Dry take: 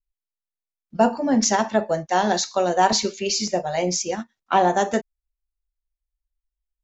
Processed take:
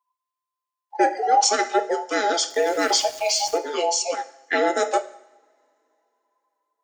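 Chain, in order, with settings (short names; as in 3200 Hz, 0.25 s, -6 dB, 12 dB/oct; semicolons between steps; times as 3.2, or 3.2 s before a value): band inversion scrambler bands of 1000 Hz; HPF 410 Hz 24 dB/oct; 2.5–3.58 sample gate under -36.5 dBFS; two-slope reverb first 0.8 s, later 3.3 s, from -25 dB, DRR 12.5 dB; gain +1.5 dB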